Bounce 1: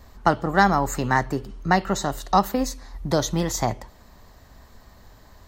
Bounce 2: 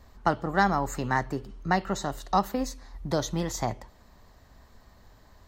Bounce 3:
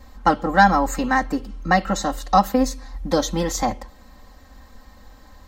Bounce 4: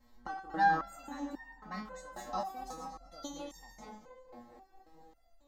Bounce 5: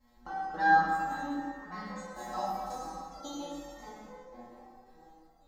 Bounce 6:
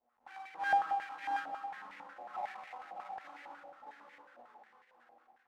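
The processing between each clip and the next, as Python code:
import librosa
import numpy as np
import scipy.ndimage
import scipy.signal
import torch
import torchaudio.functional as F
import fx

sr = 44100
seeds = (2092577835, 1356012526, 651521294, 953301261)

y1 = fx.high_shelf(x, sr, hz=8300.0, db=-4.5)
y1 = F.gain(torch.from_numpy(y1), -5.5).numpy()
y2 = y1 + 0.99 * np.pad(y1, (int(3.8 * sr / 1000.0), 0))[:len(y1)]
y2 = F.gain(torch.from_numpy(y2), 5.0).numpy()
y3 = fx.reverse_delay(y2, sr, ms=110, wet_db=-7.5)
y3 = fx.echo_tape(y3, sr, ms=229, feedback_pct=74, wet_db=-6.0, lp_hz=2200.0, drive_db=3.0, wow_cents=38)
y3 = fx.resonator_held(y3, sr, hz=3.7, low_hz=120.0, high_hz=910.0)
y3 = F.gain(torch.from_numpy(y3), -7.5).numpy()
y4 = fx.rev_plate(y3, sr, seeds[0], rt60_s=1.8, hf_ratio=0.7, predelay_ms=0, drr_db=-6.0)
y4 = F.gain(torch.from_numpy(y4), -4.0).numpy()
y5 = fx.halfwave_hold(y4, sr)
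y5 = y5 + 10.0 ** (-5.0 / 20.0) * np.pad(y5, (int(620 * sr / 1000.0), 0))[:len(y5)]
y5 = fx.filter_held_bandpass(y5, sr, hz=11.0, low_hz=700.0, high_hz=2000.0)
y5 = F.gain(torch.from_numpy(y5), -4.5).numpy()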